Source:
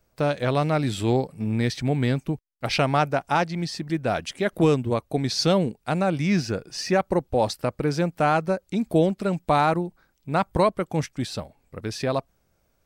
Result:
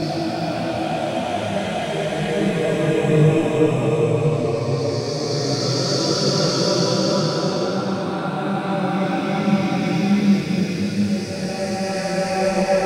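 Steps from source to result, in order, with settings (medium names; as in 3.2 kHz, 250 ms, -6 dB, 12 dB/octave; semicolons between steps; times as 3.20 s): drifting ripple filter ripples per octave 0.52, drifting -0.41 Hz, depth 7 dB; Paulstretch 4.1×, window 1.00 s, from 3.85 s; detune thickener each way 11 cents; trim +6.5 dB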